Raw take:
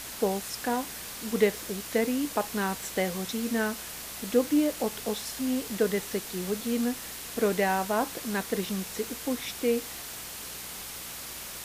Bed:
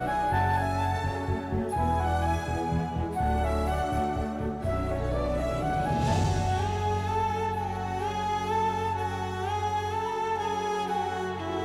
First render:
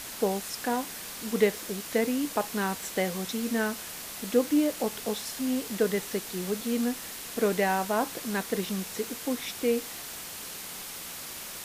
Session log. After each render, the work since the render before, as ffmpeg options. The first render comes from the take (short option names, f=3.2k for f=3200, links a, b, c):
-af "bandreject=f=60:t=h:w=4,bandreject=f=120:t=h:w=4"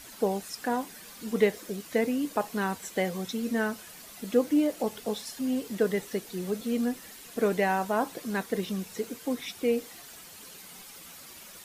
-af "afftdn=nr=10:nf=-40"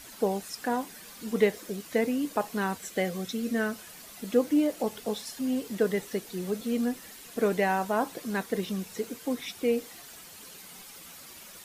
-filter_complex "[0:a]asettb=1/sr,asplit=3[a][b][c];[a]atrim=end=2.774[d];[b]atrim=start=2.77:end=3.75,asetpts=PTS-STARTPTS,afade=t=in:d=0.004:c=qsin,afade=t=out:st=0.976:d=0.004:c=qsin,equalizer=f=920:w=5.9:g=-9.5[e];[c]atrim=start=3.746[f];[d][e]acrossfade=d=0.004:c1=hsin:c2=qsin[g];[g][f]acrossfade=d=0.004:c1=qsin:c2=hsin"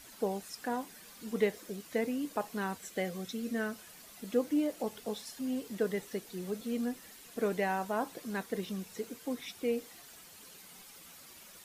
-af "volume=-6dB"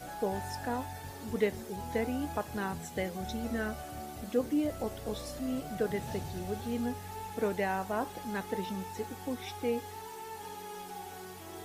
-filter_complex "[1:a]volume=-15dB[a];[0:a][a]amix=inputs=2:normalize=0"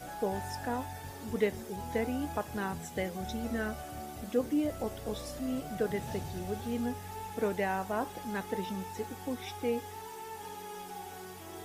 -af "bandreject=f=4.2k:w=20"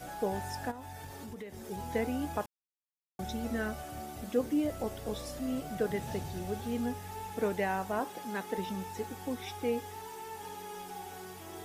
-filter_complex "[0:a]asplit=3[a][b][c];[a]afade=t=out:st=0.7:d=0.02[d];[b]acompressor=threshold=-40dB:ratio=8:attack=3.2:release=140:knee=1:detection=peak,afade=t=in:st=0.7:d=0.02,afade=t=out:st=1.69:d=0.02[e];[c]afade=t=in:st=1.69:d=0.02[f];[d][e][f]amix=inputs=3:normalize=0,asettb=1/sr,asplit=3[g][h][i];[g]atrim=end=7.994[j];[h]atrim=start=7.99:end=8.58,asetpts=PTS-STARTPTS,afade=t=in:d=0.004:c=qsin,afade=t=out:st=0.586:d=0.004:c=qsin,highpass=190[k];[i]atrim=start=8.576[l];[j][k]acrossfade=d=0.004:c1=hsin:c2=qsin[m];[m][l]acrossfade=d=0.004:c1=qsin:c2=hsin,asplit=3[n][o][p];[n]atrim=end=2.46,asetpts=PTS-STARTPTS,afade=t=out:st=2.456:d=0.004:c=hsin[q];[o]atrim=start=2.46:end=3.19,asetpts=PTS-STARTPTS,volume=0[r];[p]atrim=start=3.19,asetpts=PTS-STARTPTS,afade=t=in:d=0.004:c=hsin[s];[q][r][s]concat=n=3:v=0:a=1"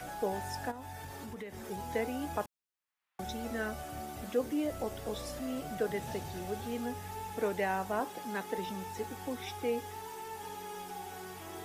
-filter_complex "[0:a]acrossover=split=300|810|2700[a][b][c][d];[a]alimiter=level_in=15dB:limit=-24dB:level=0:latency=1,volume=-15dB[e];[c]acompressor=mode=upward:threshold=-46dB:ratio=2.5[f];[e][b][f][d]amix=inputs=4:normalize=0"